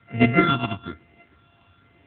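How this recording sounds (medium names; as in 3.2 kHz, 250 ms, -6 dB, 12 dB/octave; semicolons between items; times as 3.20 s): a buzz of ramps at a fixed pitch in blocks of 64 samples; phasing stages 6, 1.1 Hz, lowest notch 470–1100 Hz; a quantiser's noise floor 10-bit, dither none; AMR-NB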